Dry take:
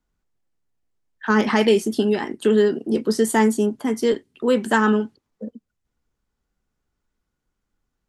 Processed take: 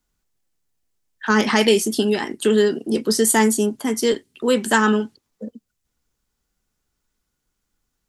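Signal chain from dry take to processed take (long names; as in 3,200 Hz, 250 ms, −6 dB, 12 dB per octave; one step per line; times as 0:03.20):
high-shelf EQ 3,100 Hz +11.5 dB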